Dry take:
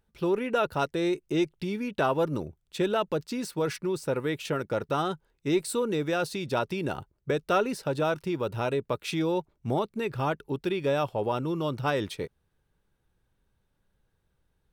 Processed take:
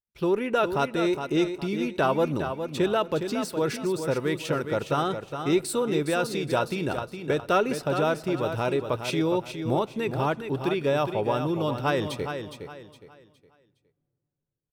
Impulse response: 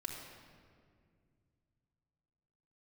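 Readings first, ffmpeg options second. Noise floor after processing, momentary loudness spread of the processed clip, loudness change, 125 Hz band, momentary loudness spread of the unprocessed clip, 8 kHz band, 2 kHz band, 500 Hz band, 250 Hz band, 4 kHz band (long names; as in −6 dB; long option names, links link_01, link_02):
−81 dBFS, 5 LU, +2.5 dB, +2.5 dB, 5 LU, +2.5 dB, +2.5 dB, +2.5 dB, +3.0 dB, +3.0 dB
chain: -filter_complex "[0:a]agate=range=-33dB:threshold=-55dB:ratio=3:detection=peak,aecho=1:1:413|826|1239|1652:0.398|0.123|0.0383|0.0119,asplit=2[link_01][link_02];[1:a]atrim=start_sample=2205[link_03];[link_02][link_03]afir=irnorm=-1:irlink=0,volume=-19.5dB[link_04];[link_01][link_04]amix=inputs=2:normalize=0,volume=1.5dB"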